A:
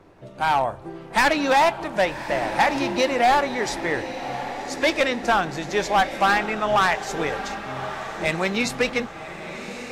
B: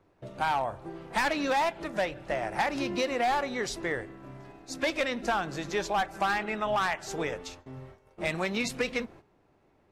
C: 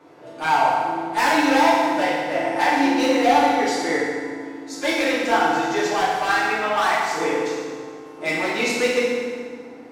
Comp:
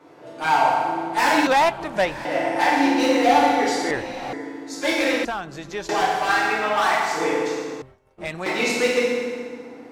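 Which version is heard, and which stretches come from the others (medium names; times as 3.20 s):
C
1.47–2.25 s: from A
3.91–4.33 s: from A
5.25–5.89 s: from B
7.82–8.46 s: from B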